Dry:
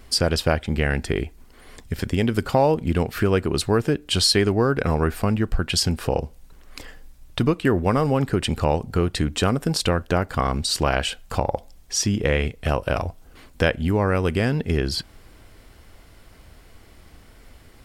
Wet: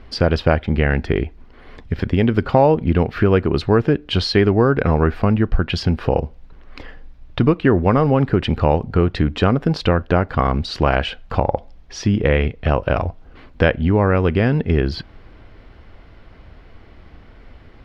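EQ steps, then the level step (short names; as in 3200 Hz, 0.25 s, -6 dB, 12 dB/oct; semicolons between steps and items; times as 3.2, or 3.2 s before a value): air absorption 280 m; +5.5 dB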